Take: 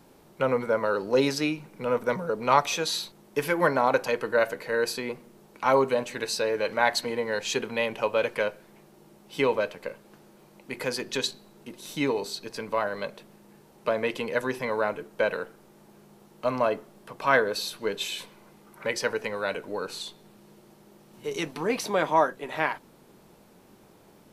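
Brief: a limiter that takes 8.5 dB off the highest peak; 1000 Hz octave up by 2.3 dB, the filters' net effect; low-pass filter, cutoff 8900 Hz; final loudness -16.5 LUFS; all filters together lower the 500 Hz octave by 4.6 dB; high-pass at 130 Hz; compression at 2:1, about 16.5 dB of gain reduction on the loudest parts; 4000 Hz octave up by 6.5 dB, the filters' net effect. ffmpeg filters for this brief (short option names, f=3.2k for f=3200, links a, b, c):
-af "highpass=130,lowpass=8.9k,equalizer=f=500:t=o:g=-6.5,equalizer=f=1k:t=o:g=4,equalizer=f=4k:t=o:g=7.5,acompressor=threshold=-46dB:ratio=2,volume=25.5dB,alimiter=limit=-4dB:level=0:latency=1"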